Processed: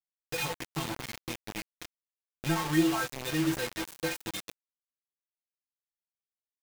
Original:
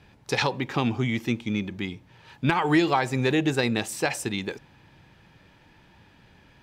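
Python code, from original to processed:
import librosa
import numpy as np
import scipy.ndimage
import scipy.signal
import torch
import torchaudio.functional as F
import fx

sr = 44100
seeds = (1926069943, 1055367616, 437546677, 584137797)

y = fx.low_shelf(x, sr, hz=78.0, db=10.0)
y = fx.stiff_resonator(y, sr, f0_hz=160.0, decay_s=0.32, stiffness=0.008)
y = fx.quant_dither(y, sr, seeds[0], bits=6, dither='none')
y = F.gain(torch.from_numpy(y), 2.5).numpy()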